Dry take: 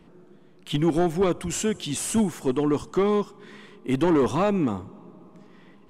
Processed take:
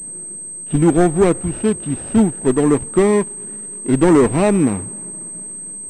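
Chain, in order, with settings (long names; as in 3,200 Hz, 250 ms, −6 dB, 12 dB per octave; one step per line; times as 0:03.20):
running median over 41 samples
switching amplifier with a slow clock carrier 8,300 Hz
level +9 dB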